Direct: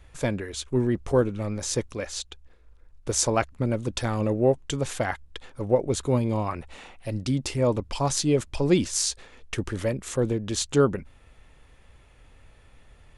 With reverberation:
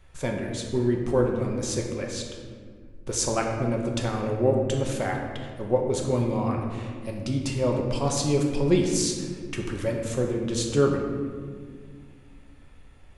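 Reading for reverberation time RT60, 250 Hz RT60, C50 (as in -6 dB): 1.9 s, 3.1 s, 3.5 dB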